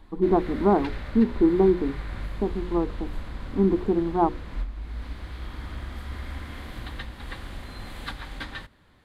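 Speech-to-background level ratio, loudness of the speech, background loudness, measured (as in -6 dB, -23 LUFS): 14.0 dB, -24.0 LUFS, -38.0 LUFS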